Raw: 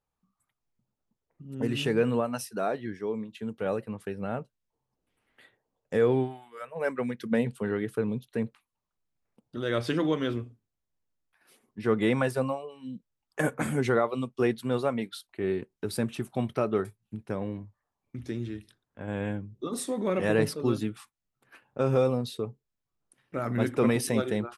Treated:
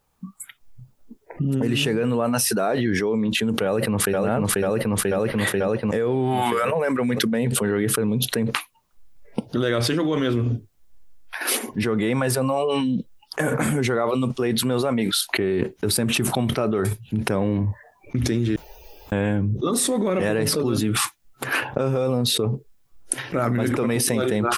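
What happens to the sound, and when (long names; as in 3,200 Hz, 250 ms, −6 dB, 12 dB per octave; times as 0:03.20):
0:03.64–0:04.20: delay throw 490 ms, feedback 55%, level −2 dB
0:18.56–0:19.12: fill with room tone
whole clip: noise reduction from a noise print of the clip's start 21 dB; high-shelf EQ 9,100 Hz +4.5 dB; envelope flattener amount 100%; level −2 dB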